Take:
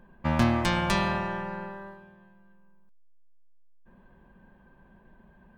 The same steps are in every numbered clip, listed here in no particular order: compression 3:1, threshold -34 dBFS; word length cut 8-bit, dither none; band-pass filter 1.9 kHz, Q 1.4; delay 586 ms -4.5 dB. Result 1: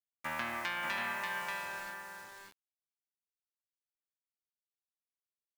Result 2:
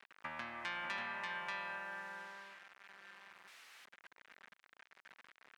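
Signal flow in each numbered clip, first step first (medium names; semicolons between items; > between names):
band-pass filter > word length cut > compression > delay; delay > word length cut > compression > band-pass filter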